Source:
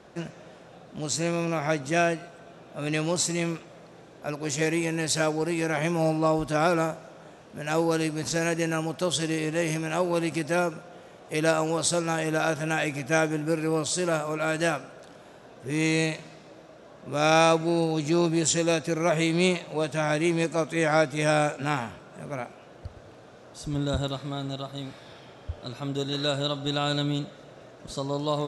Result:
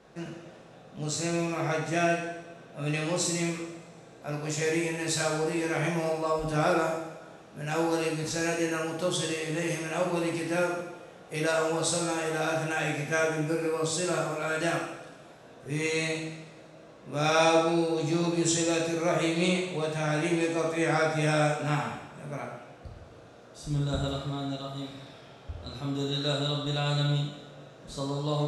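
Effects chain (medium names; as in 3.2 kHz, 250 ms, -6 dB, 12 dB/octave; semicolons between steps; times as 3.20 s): two-slope reverb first 0.89 s, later 3 s, from -24 dB, DRR -2.5 dB; trim -6.5 dB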